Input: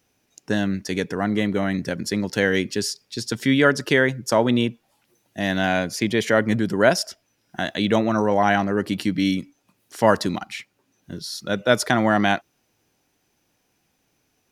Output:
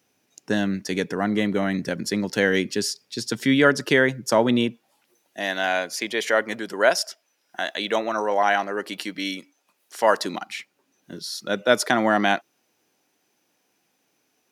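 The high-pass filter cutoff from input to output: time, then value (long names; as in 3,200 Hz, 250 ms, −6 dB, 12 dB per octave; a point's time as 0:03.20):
0:04.55 140 Hz
0:05.56 490 Hz
0:10.08 490 Hz
0:10.52 230 Hz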